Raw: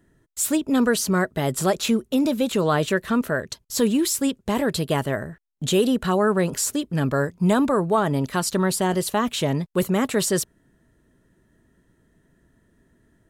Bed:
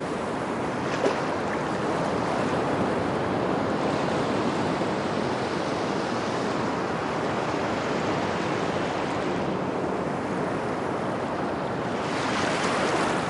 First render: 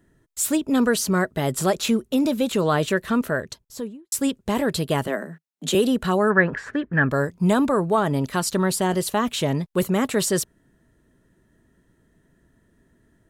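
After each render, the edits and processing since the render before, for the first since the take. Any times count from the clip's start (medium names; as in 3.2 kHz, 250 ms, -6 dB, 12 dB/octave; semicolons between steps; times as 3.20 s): 3.34–4.12 s: studio fade out; 5.07–5.75 s: steep high-pass 160 Hz 96 dB/octave; 6.30–7.11 s: resonant low-pass 1.7 kHz, resonance Q 8.2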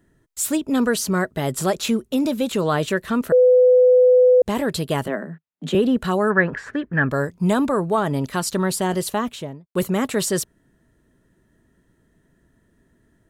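3.32–4.42 s: bleep 502 Hz -9.5 dBFS; 5.08–5.97 s: tone controls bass +5 dB, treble -14 dB; 9.07–9.75 s: studio fade out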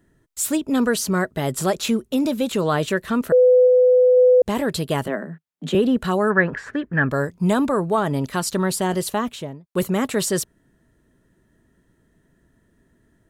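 3.60–4.17 s: flutter echo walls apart 11.8 m, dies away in 0.24 s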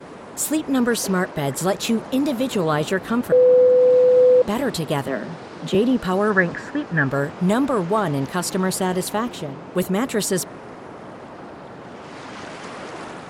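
add bed -9.5 dB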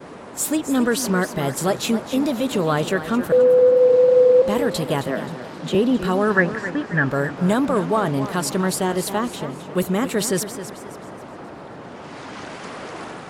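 pre-echo 33 ms -21 dB; modulated delay 266 ms, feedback 39%, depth 96 cents, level -12 dB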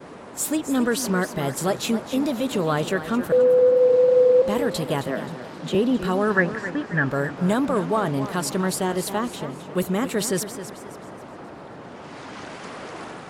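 trim -2.5 dB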